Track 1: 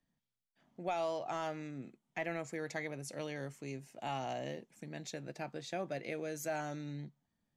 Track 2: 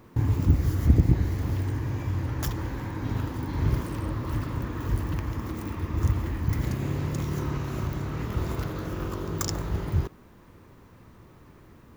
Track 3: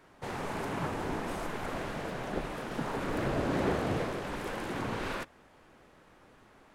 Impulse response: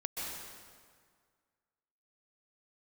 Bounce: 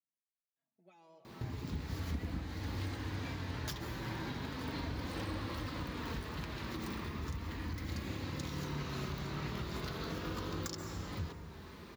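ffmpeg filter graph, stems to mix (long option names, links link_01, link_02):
-filter_complex "[0:a]aecho=1:1:6.1:0.38,asplit=2[link_01][link_02];[link_02]adelay=3.7,afreqshift=-1.8[link_03];[link_01][link_03]amix=inputs=2:normalize=1,volume=-20dB,asplit=2[link_04][link_05];[link_05]volume=-9.5dB[link_06];[1:a]acompressor=threshold=-40dB:ratio=2.5,adelay=1250,volume=1.5dB,asplit=2[link_07][link_08];[link_08]volume=-7dB[link_09];[2:a]adelay=1500,volume=-12.5dB[link_10];[link_07][link_10]amix=inputs=2:normalize=0,equalizer=frequency=4200:width=1.4:gain=13.5,alimiter=level_in=2.5dB:limit=-24dB:level=0:latency=1:release=477,volume=-2.5dB,volume=0dB[link_11];[3:a]atrim=start_sample=2205[link_12];[link_06][link_09]amix=inputs=2:normalize=0[link_13];[link_13][link_12]afir=irnorm=-1:irlink=0[link_14];[link_04][link_11][link_14]amix=inputs=3:normalize=0,highpass=65,adynamicequalizer=threshold=0.00141:dfrequency=2100:dqfactor=0.83:tfrequency=2100:tqfactor=0.83:attack=5:release=100:ratio=0.375:range=2:mode=boostabove:tftype=bell,flanger=delay=3.5:depth=1.8:regen=-45:speed=0.37:shape=triangular"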